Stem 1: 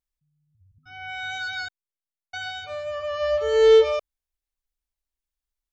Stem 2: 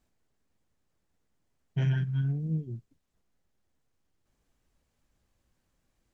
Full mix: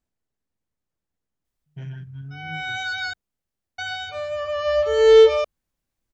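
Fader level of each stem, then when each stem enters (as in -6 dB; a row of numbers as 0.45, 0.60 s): +3.0, -8.0 dB; 1.45, 0.00 s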